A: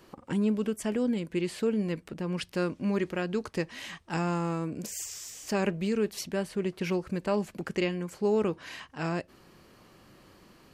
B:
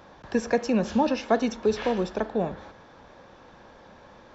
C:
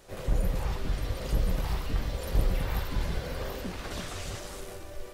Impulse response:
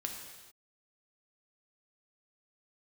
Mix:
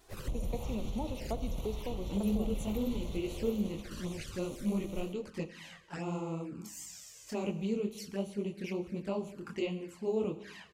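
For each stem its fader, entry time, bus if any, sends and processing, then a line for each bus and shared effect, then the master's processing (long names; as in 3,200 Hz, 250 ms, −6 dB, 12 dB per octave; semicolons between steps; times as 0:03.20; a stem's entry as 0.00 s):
−5.5 dB, 1.80 s, no bus, send −5 dB, micro pitch shift up and down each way 48 cents
−11.5 dB, 0.00 s, bus A, send −8 dB, expander for the loud parts 1.5 to 1, over −30 dBFS
+2.5 dB, 0.00 s, bus A, send −14.5 dB, brickwall limiter −23.5 dBFS, peak gain reduction 10 dB; tape wow and flutter 20 cents; expander for the loud parts 1.5 to 1, over −47 dBFS; automatic ducking −10 dB, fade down 2.00 s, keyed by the second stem
bus A: 0.0 dB, high-shelf EQ 3,900 Hz +7 dB; downward compressor, threshold −35 dBFS, peak gain reduction 9.5 dB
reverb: on, pre-delay 3 ms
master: flanger swept by the level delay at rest 3.1 ms, full sweep at −33 dBFS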